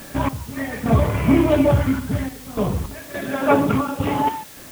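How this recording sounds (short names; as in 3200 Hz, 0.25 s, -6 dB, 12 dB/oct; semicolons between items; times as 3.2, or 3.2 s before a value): random-step tremolo, depth 90%; a quantiser's noise floor 8-bit, dither triangular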